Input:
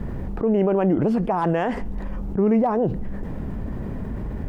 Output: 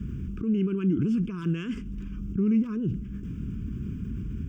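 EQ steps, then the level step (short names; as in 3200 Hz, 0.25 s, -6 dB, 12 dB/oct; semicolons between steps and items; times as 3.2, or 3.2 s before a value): HPF 54 Hz; Butterworth band-stop 800 Hz, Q 0.6; fixed phaser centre 2800 Hz, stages 8; -1.0 dB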